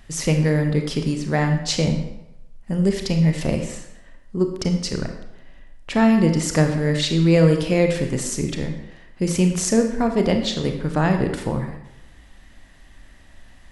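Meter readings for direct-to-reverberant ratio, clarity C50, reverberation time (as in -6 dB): 4.5 dB, 6.5 dB, 0.90 s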